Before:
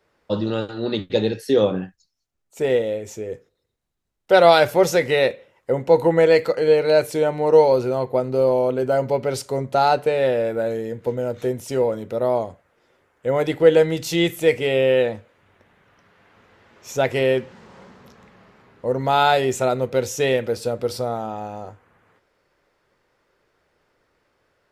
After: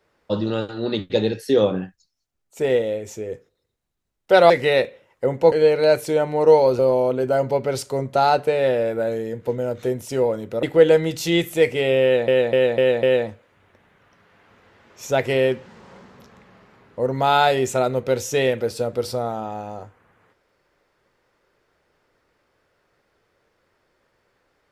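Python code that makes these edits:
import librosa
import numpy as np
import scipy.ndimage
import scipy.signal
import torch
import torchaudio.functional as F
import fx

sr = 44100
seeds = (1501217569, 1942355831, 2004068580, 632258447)

y = fx.edit(x, sr, fx.cut(start_s=4.5, length_s=0.46),
    fx.cut(start_s=5.98, length_s=0.6),
    fx.cut(start_s=7.85, length_s=0.53),
    fx.cut(start_s=12.22, length_s=1.27),
    fx.repeat(start_s=14.89, length_s=0.25, count=5), tone=tone)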